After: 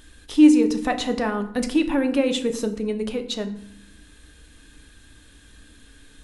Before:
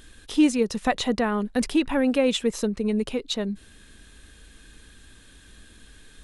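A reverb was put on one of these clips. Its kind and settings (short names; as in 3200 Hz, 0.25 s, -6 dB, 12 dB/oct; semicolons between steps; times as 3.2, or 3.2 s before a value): FDN reverb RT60 0.72 s, low-frequency decay 1.55×, high-frequency decay 0.65×, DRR 6.5 dB; gain -1 dB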